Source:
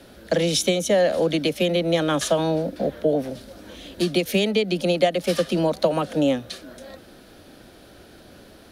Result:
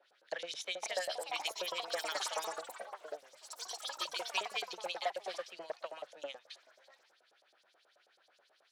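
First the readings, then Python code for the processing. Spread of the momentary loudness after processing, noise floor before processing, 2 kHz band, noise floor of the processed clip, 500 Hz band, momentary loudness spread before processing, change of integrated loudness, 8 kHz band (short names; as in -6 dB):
11 LU, -48 dBFS, -11.0 dB, -72 dBFS, -21.5 dB, 17 LU, -17.5 dB, -12.5 dB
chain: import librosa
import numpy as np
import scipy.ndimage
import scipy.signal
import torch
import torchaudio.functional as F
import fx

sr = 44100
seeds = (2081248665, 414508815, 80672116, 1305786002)

y = fx.filter_lfo_bandpass(x, sr, shape='saw_up', hz=9.3, low_hz=530.0, high_hz=7900.0, q=1.8)
y = 10.0 ** (-20.5 / 20.0) * np.tanh(y / 10.0 ** (-20.5 / 20.0))
y = fx.weighting(y, sr, curve='A')
y = fx.echo_pitch(y, sr, ms=589, semitones=5, count=3, db_per_echo=-3.0)
y = fx.peak_eq(y, sr, hz=250.0, db=-12.0, octaves=0.5)
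y = fx.upward_expand(y, sr, threshold_db=-41.0, expansion=1.5)
y = y * 10.0 ** (-4.5 / 20.0)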